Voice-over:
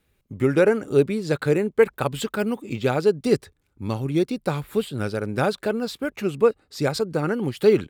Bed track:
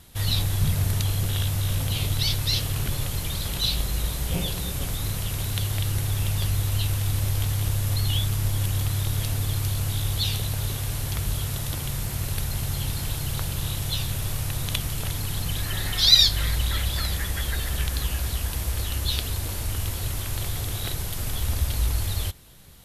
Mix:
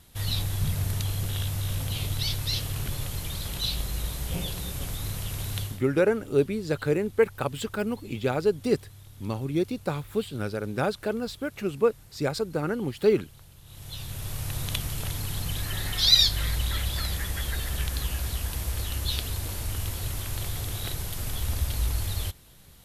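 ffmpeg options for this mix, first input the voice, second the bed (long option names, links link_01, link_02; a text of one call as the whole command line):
ffmpeg -i stem1.wav -i stem2.wav -filter_complex "[0:a]adelay=5400,volume=-4.5dB[link_01];[1:a]volume=15.5dB,afade=type=out:start_time=5.59:duration=0.23:silence=0.11885,afade=type=in:start_time=13.65:duration=0.93:silence=0.1[link_02];[link_01][link_02]amix=inputs=2:normalize=0" out.wav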